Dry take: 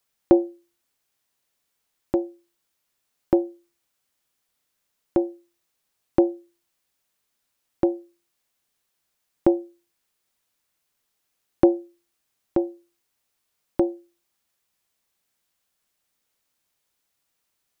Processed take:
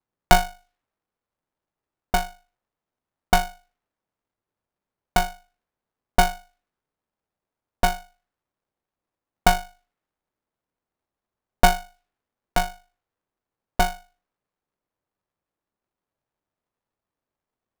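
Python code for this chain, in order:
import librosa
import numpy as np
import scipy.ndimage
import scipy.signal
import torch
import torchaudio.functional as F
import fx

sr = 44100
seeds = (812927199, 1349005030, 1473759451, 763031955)

y = fx.env_lowpass(x, sr, base_hz=730.0, full_db=-23.5)
y = y * np.sign(np.sin(2.0 * np.pi * 370.0 * np.arange(len(y)) / sr))
y = F.gain(torch.from_numpy(y), 1.5).numpy()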